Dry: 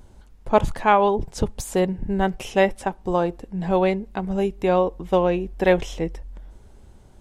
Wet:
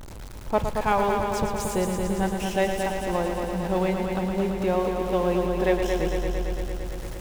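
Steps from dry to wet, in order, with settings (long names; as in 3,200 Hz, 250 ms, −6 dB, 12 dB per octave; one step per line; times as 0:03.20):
converter with a step at zero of −28 dBFS
echo machine with several playback heads 113 ms, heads first and second, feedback 75%, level −8 dB
level −7 dB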